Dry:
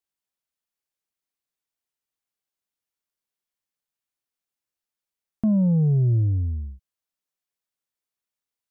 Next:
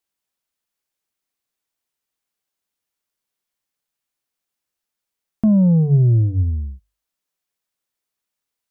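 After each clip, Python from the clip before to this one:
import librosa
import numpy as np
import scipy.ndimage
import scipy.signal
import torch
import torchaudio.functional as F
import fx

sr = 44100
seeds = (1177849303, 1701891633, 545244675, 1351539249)

y = fx.hum_notches(x, sr, base_hz=50, count=3)
y = y * 10.0 ** (6.0 / 20.0)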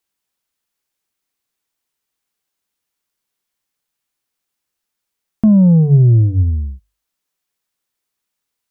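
y = fx.peak_eq(x, sr, hz=620.0, db=-3.0, octaves=0.37)
y = y * 10.0 ** (4.5 / 20.0)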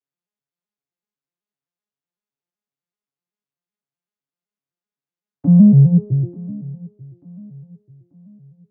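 y = fx.vocoder_arp(x, sr, chord='major triad', root=49, every_ms=127)
y = fx.echo_feedback(y, sr, ms=888, feedback_pct=41, wet_db=-21.0)
y = y * 10.0 ** (-1.0 / 20.0)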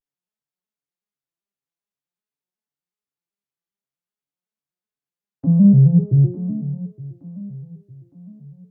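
y = fx.rider(x, sr, range_db=10, speed_s=0.5)
y = fx.vibrato(y, sr, rate_hz=0.49, depth_cents=60.0)
y = fx.doubler(y, sr, ms=50.0, db=-11)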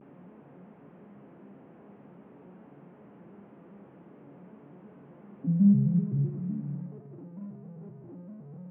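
y = fx.delta_mod(x, sr, bps=16000, step_db=-27.5)
y = fx.ladder_bandpass(y, sr, hz=260.0, resonance_pct=25)
y = fx.rev_spring(y, sr, rt60_s=1.5, pass_ms=(49,), chirp_ms=75, drr_db=7.5)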